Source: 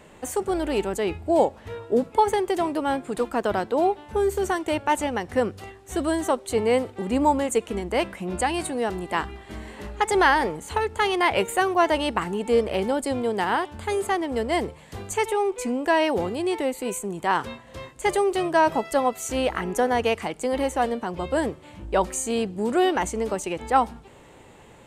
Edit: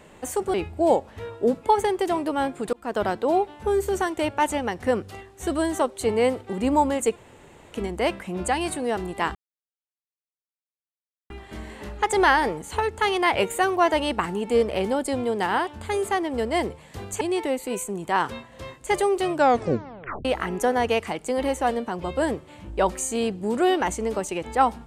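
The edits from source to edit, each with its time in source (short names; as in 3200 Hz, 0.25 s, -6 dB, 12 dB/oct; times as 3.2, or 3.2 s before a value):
0.54–1.03 cut
3.22–3.49 fade in
7.65 insert room tone 0.56 s
9.28 insert silence 1.95 s
15.19–16.36 cut
18.47 tape stop 0.93 s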